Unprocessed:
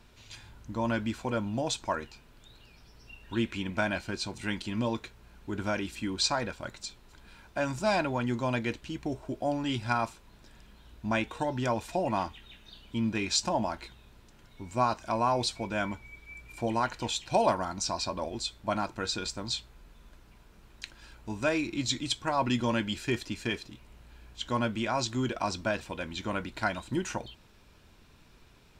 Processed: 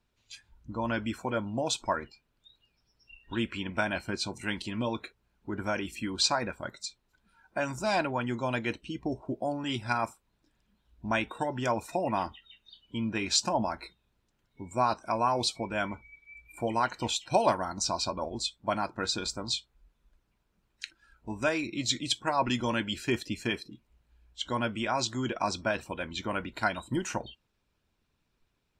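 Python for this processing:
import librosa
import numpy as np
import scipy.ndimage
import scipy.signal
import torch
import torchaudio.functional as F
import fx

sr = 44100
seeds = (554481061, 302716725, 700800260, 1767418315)

y = fx.noise_reduce_blind(x, sr, reduce_db=18)
y = fx.hpss(y, sr, part='percussive', gain_db=5)
y = y * librosa.db_to_amplitude(-3.0)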